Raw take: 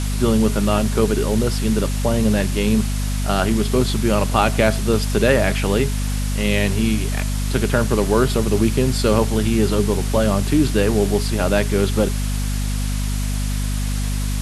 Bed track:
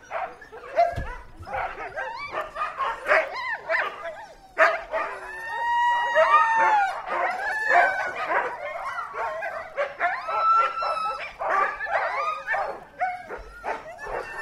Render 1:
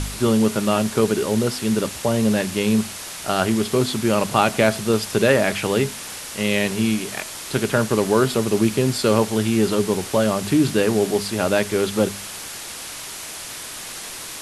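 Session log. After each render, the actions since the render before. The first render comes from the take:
hum removal 50 Hz, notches 5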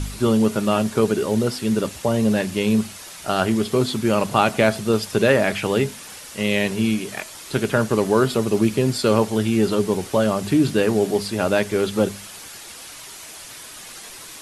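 broadband denoise 7 dB, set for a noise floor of −34 dBFS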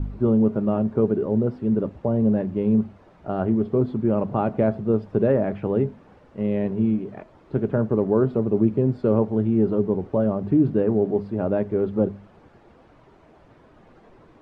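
Bessel low-pass filter 520 Hz, order 2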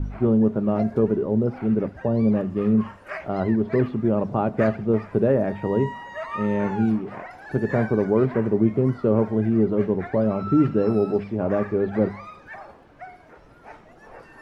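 mix in bed track −14 dB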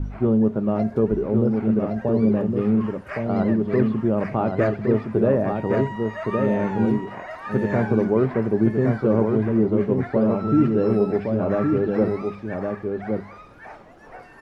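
single-tap delay 1,115 ms −4.5 dB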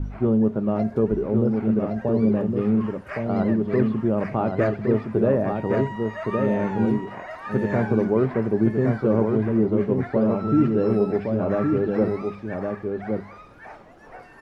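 level −1 dB

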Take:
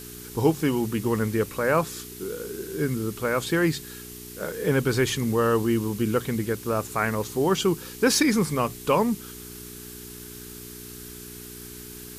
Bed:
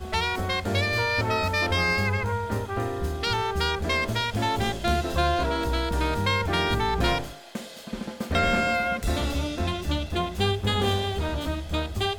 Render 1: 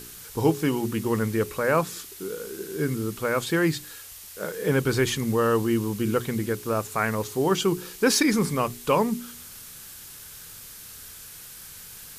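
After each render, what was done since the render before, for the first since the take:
hum removal 60 Hz, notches 7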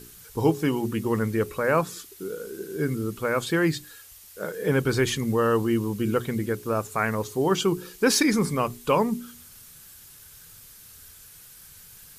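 broadband denoise 7 dB, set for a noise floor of −43 dBFS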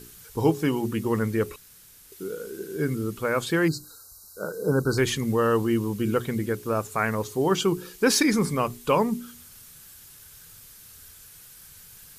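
0:01.56–0:02.12: fill with room tone
0:03.68–0:04.98: linear-phase brick-wall band-stop 1,600–3,800 Hz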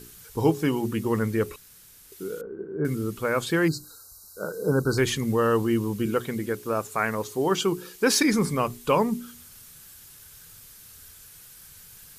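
0:02.41–0:02.85: low-pass filter 1,300 Hz 24 dB per octave
0:06.06–0:08.22: low-shelf EQ 120 Hz −10 dB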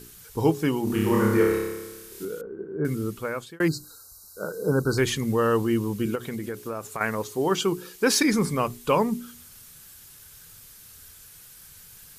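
0:00.84–0:02.25: flutter between parallel walls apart 5 metres, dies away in 1.2 s
0:03.07–0:03.60: fade out
0:06.15–0:07.01: downward compressor, threshold −27 dBFS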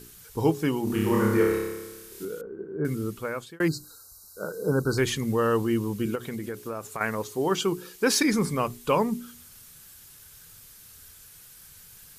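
level −1.5 dB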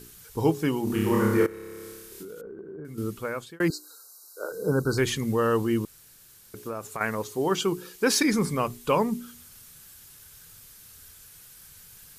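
0:01.46–0:02.98: downward compressor 12 to 1, threshold −36 dBFS
0:03.70–0:04.52: Butterworth high-pass 310 Hz
0:05.85–0:06.54: fill with room tone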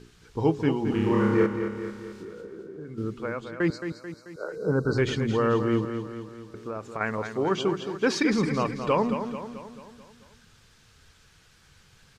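high-frequency loss of the air 140 metres
repeating echo 219 ms, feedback 53%, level −8.5 dB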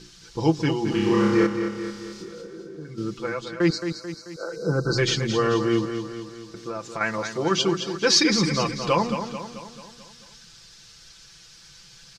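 parametric band 5,200 Hz +14.5 dB 1.3 octaves
comb filter 5.9 ms, depth 72%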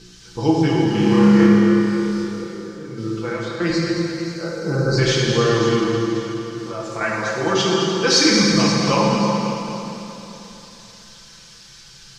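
on a send: delay that swaps between a low-pass and a high-pass 268 ms, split 1,400 Hz, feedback 58%, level −7.5 dB
on the sum: dense smooth reverb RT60 2.2 s, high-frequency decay 0.9×, DRR −3 dB

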